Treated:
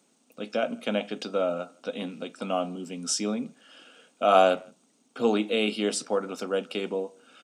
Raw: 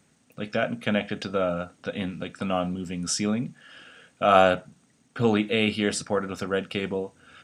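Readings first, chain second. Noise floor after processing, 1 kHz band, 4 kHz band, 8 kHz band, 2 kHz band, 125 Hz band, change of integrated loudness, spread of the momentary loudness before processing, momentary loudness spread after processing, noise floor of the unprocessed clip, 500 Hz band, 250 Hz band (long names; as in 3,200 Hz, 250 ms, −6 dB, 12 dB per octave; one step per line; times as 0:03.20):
−66 dBFS, −1.5 dB, −1.5 dB, 0.0 dB, −5.5 dB, −10.0 dB, −2.0 dB, 12 LU, 13 LU, −64 dBFS, −0.5 dB, −3.5 dB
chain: high-pass filter 230 Hz 24 dB per octave
parametric band 1,800 Hz −11 dB 0.62 octaves
far-end echo of a speakerphone 160 ms, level −27 dB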